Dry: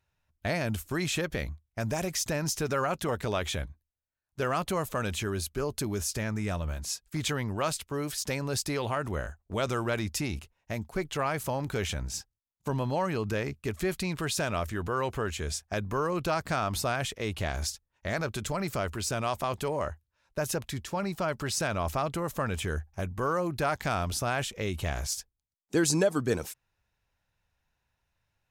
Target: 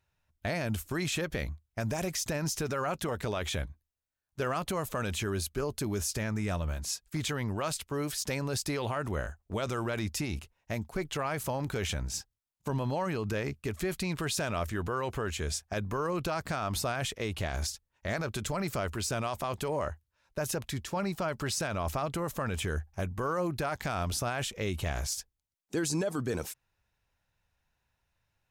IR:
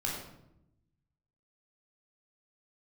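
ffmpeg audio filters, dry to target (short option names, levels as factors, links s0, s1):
-af "alimiter=limit=0.0708:level=0:latency=1:release=25"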